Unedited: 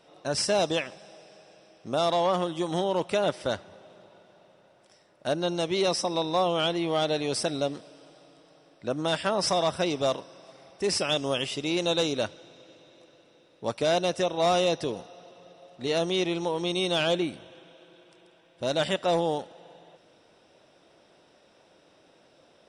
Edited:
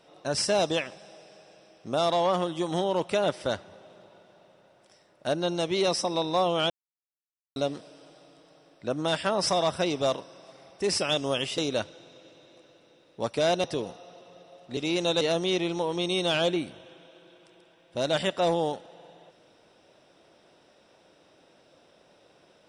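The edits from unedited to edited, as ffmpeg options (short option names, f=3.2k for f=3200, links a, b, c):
-filter_complex "[0:a]asplit=7[a][b][c][d][e][f][g];[a]atrim=end=6.7,asetpts=PTS-STARTPTS,afade=t=out:st=6.696:d=0.004:c=hsin[h];[b]atrim=start=6.7:end=7.56,asetpts=PTS-STARTPTS,volume=0[i];[c]atrim=start=7.56:end=11.582,asetpts=PTS-STARTPTS,afade=t=in:d=0.004:c=hsin[j];[d]atrim=start=12.018:end=14.082[k];[e]atrim=start=14.738:end=15.872[l];[f]atrim=start=11.578:end=12.022[m];[g]atrim=start=15.868[n];[h][i][j]concat=n=3:v=0:a=1[o];[o][k]acrossfade=d=0.004:c1=hsin:c2=hsin[p];[p][l]acrossfade=d=0.004:c1=hsin:c2=hsin[q];[q][m]acrossfade=d=0.004:c1=hsin:c2=hsin[r];[r][n]acrossfade=d=0.004:c1=hsin:c2=hsin"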